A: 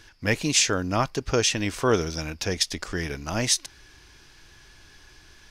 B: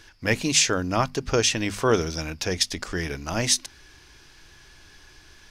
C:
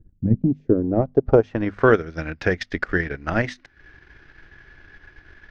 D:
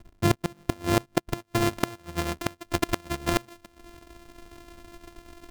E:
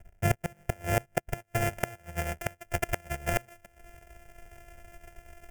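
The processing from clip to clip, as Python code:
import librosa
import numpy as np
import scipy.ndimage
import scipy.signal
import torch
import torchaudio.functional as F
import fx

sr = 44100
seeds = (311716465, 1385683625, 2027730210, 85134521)

y1 = fx.hum_notches(x, sr, base_hz=50, count=5)
y1 = y1 * 10.0 ** (1.0 / 20.0)
y2 = fx.filter_sweep_lowpass(y1, sr, from_hz=190.0, to_hz=1800.0, start_s=0.34, end_s=1.88, q=2.0)
y2 = fx.transient(y2, sr, attack_db=6, sustain_db=-11)
y2 = fx.graphic_eq_15(y2, sr, hz=(1000, 2500, 10000), db=(-8, -4, -5))
y2 = y2 * 10.0 ** (3.0 / 20.0)
y3 = np.r_[np.sort(y2[:len(y2) // 128 * 128].reshape(-1, 128), axis=1).ravel(), y2[len(y2) // 128 * 128:]]
y3 = fx.gate_flip(y3, sr, shuts_db=-9.0, range_db=-27)
y4 = fx.fixed_phaser(y3, sr, hz=1100.0, stages=6)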